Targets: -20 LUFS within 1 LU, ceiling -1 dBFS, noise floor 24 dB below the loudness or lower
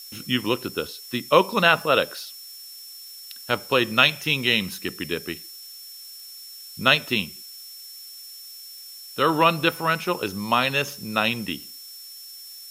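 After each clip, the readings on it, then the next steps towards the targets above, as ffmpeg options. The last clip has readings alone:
steady tone 5400 Hz; tone level -41 dBFS; noise floor -42 dBFS; noise floor target -47 dBFS; loudness -22.5 LUFS; peak -1.5 dBFS; loudness target -20.0 LUFS
-> -af "bandreject=f=5.4k:w=30"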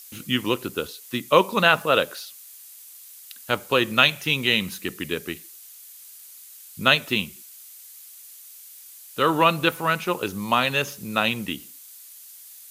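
steady tone none; noise floor -45 dBFS; noise floor target -47 dBFS
-> -af "afftdn=nr=6:nf=-45"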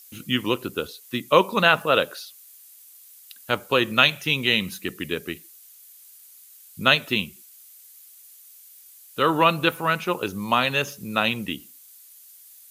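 noise floor -49 dBFS; loudness -22.5 LUFS; peak -1.5 dBFS; loudness target -20.0 LUFS
-> -af "volume=2.5dB,alimiter=limit=-1dB:level=0:latency=1"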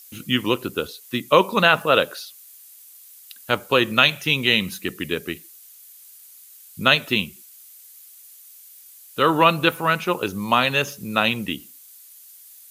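loudness -20.0 LUFS; peak -1.0 dBFS; noise floor -47 dBFS

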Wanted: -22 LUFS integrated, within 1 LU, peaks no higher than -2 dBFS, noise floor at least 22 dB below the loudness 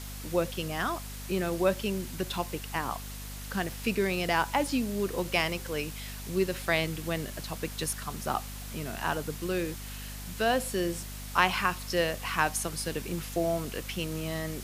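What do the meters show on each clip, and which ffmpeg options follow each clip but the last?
hum 50 Hz; harmonics up to 250 Hz; hum level -39 dBFS; noise floor -40 dBFS; noise floor target -53 dBFS; loudness -31.0 LUFS; peak -7.0 dBFS; loudness target -22.0 LUFS
-> -af "bandreject=f=50:t=h:w=6,bandreject=f=100:t=h:w=6,bandreject=f=150:t=h:w=6,bandreject=f=200:t=h:w=6,bandreject=f=250:t=h:w=6"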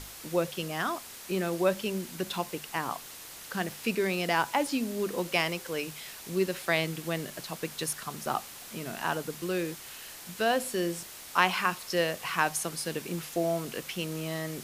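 hum none; noise floor -46 dBFS; noise floor target -53 dBFS
-> -af "afftdn=nr=7:nf=-46"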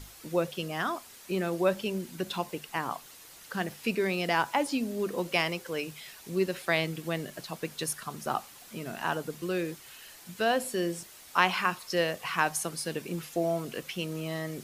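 noise floor -51 dBFS; noise floor target -54 dBFS
-> -af "afftdn=nr=6:nf=-51"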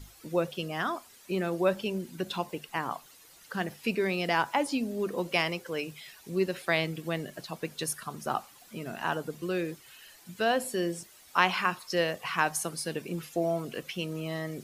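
noise floor -56 dBFS; loudness -31.5 LUFS; peak -7.0 dBFS; loudness target -22.0 LUFS
-> -af "volume=9.5dB,alimiter=limit=-2dB:level=0:latency=1"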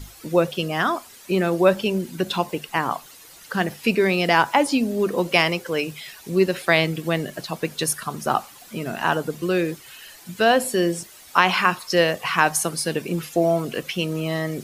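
loudness -22.0 LUFS; peak -2.0 dBFS; noise floor -46 dBFS

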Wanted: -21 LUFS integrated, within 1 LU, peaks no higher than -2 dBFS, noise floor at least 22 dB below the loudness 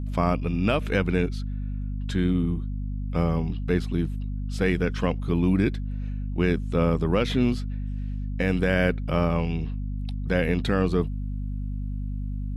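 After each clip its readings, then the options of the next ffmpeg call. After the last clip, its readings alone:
hum 50 Hz; harmonics up to 250 Hz; hum level -27 dBFS; loudness -26.5 LUFS; peak -10.0 dBFS; loudness target -21.0 LUFS
-> -af "bandreject=f=50:t=h:w=4,bandreject=f=100:t=h:w=4,bandreject=f=150:t=h:w=4,bandreject=f=200:t=h:w=4,bandreject=f=250:t=h:w=4"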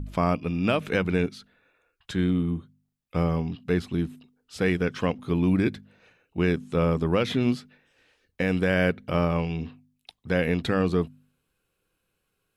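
hum none; loudness -26.0 LUFS; peak -11.0 dBFS; loudness target -21.0 LUFS
-> -af "volume=5dB"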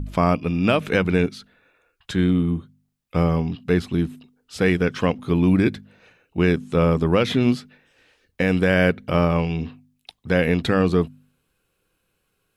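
loudness -21.0 LUFS; peak -6.0 dBFS; noise floor -73 dBFS

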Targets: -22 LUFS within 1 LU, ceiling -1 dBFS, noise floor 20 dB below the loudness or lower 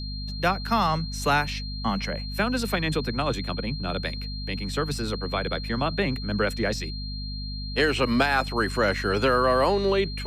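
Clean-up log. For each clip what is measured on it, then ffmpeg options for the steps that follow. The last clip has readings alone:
hum 50 Hz; harmonics up to 250 Hz; hum level -31 dBFS; steady tone 4200 Hz; tone level -37 dBFS; loudness -26.0 LUFS; peak -9.0 dBFS; loudness target -22.0 LUFS
-> -af "bandreject=f=50:t=h:w=6,bandreject=f=100:t=h:w=6,bandreject=f=150:t=h:w=6,bandreject=f=200:t=h:w=6,bandreject=f=250:t=h:w=6"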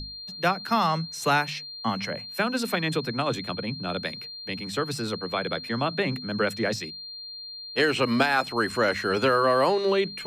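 hum none; steady tone 4200 Hz; tone level -37 dBFS
-> -af "bandreject=f=4.2k:w=30"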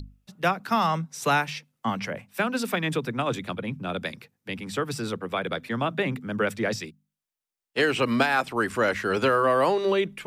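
steady tone none; loudness -26.5 LUFS; peak -8.5 dBFS; loudness target -22.0 LUFS
-> -af "volume=4.5dB"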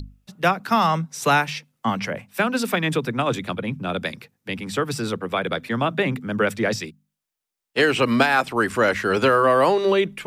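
loudness -22.0 LUFS; peak -4.0 dBFS; noise floor -85 dBFS

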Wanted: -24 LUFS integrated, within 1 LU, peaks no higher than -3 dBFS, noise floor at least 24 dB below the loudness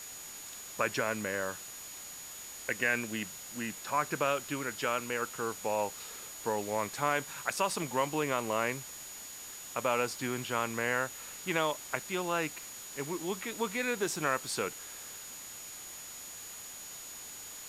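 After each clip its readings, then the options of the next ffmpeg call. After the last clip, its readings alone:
steady tone 6800 Hz; tone level -46 dBFS; noise floor -46 dBFS; noise floor target -59 dBFS; loudness -34.5 LUFS; peak -14.5 dBFS; loudness target -24.0 LUFS
-> -af "bandreject=f=6.8k:w=30"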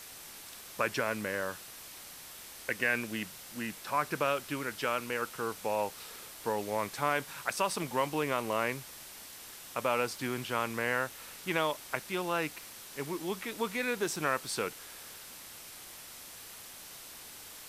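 steady tone none; noise floor -49 dBFS; noise floor target -58 dBFS
-> -af "afftdn=nr=9:nf=-49"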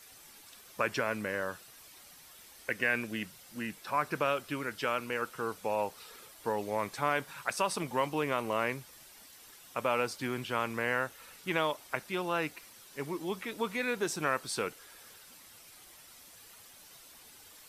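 noise floor -55 dBFS; noise floor target -58 dBFS
-> -af "afftdn=nr=6:nf=-55"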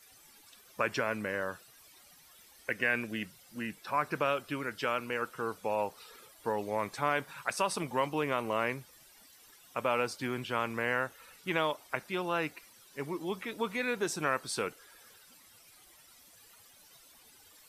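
noise floor -59 dBFS; loudness -34.0 LUFS; peak -15.0 dBFS; loudness target -24.0 LUFS
-> -af "volume=10dB"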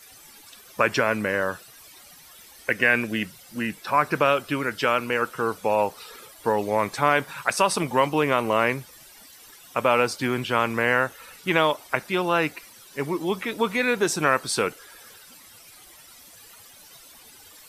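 loudness -24.0 LUFS; peak -5.0 dBFS; noise floor -49 dBFS

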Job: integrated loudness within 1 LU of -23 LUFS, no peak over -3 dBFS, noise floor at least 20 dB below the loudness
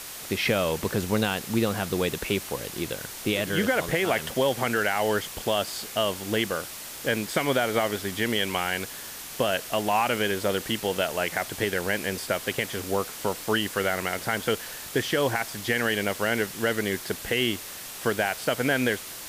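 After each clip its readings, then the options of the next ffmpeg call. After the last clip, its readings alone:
noise floor -39 dBFS; noise floor target -47 dBFS; loudness -27.0 LUFS; peak -11.0 dBFS; loudness target -23.0 LUFS
-> -af "afftdn=nr=8:nf=-39"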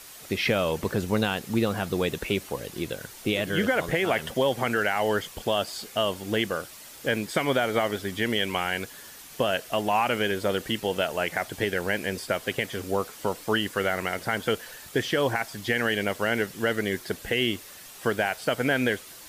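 noise floor -46 dBFS; noise floor target -47 dBFS
-> -af "afftdn=nr=6:nf=-46"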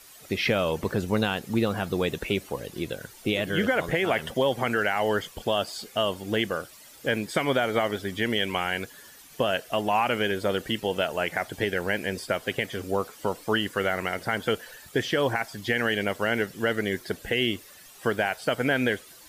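noise floor -50 dBFS; loudness -27.0 LUFS; peak -11.0 dBFS; loudness target -23.0 LUFS
-> -af "volume=4dB"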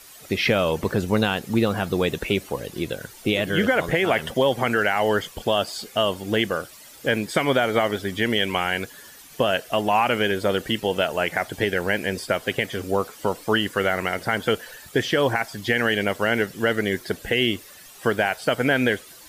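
loudness -23.0 LUFS; peak -7.0 dBFS; noise floor -46 dBFS

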